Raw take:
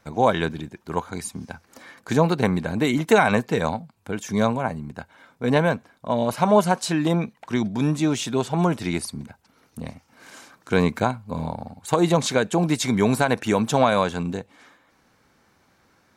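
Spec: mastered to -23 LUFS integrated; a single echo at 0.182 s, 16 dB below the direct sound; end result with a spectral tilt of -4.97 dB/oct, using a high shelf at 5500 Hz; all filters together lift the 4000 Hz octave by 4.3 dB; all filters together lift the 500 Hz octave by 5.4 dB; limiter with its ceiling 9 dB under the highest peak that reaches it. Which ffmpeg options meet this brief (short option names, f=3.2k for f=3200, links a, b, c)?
-af "equalizer=f=500:t=o:g=6.5,equalizer=f=4k:t=o:g=7.5,highshelf=f=5.5k:g=-7.5,alimiter=limit=-9dB:level=0:latency=1,aecho=1:1:182:0.158,volume=-0.5dB"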